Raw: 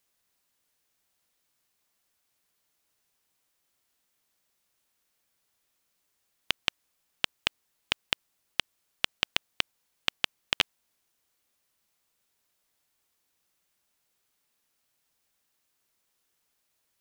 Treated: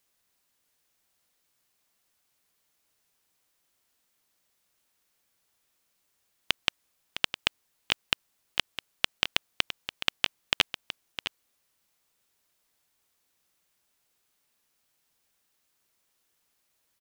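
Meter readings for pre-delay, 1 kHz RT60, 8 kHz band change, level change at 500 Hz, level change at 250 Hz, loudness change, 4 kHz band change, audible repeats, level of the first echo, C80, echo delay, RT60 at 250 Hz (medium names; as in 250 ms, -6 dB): no reverb, no reverb, +2.0 dB, +1.5 dB, +2.0 dB, +1.0 dB, +2.0 dB, 1, -11.0 dB, no reverb, 659 ms, no reverb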